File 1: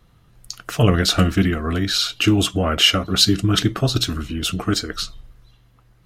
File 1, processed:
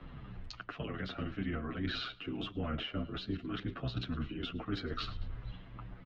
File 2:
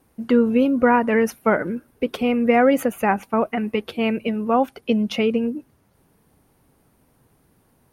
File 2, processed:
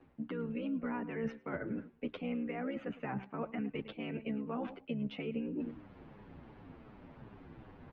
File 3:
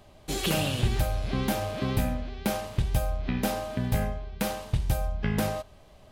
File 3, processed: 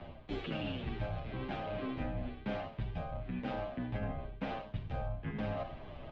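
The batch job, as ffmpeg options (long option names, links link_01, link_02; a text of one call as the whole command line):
ffmpeg -i in.wav -filter_complex "[0:a]lowpass=frequency=3100:width=0.5412,lowpass=frequency=3100:width=1.3066,asplit=2[link_01][link_02];[link_02]aecho=0:1:106|212:0.0794|0.0214[link_03];[link_01][link_03]amix=inputs=2:normalize=0,tremolo=f=65:d=0.889,acrossover=split=83|420|1200[link_04][link_05][link_06][link_07];[link_04]acompressor=threshold=-38dB:ratio=4[link_08];[link_05]acompressor=threshold=-28dB:ratio=4[link_09];[link_06]acompressor=threshold=-37dB:ratio=4[link_10];[link_07]acompressor=threshold=-35dB:ratio=4[link_11];[link_08][link_09][link_10][link_11]amix=inputs=4:normalize=0,equalizer=frequency=270:width=4.1:gain=3.5,areverse,acompressor=threshold=-45dB:ratio=12,areverse,asplit=2[link_12][link_13];[link_13]adelay=8,afreqshift=-2.7[link_14];[link_12][link_14]amix=inputs=2:normalize=1,volume=13.5dB" out.wav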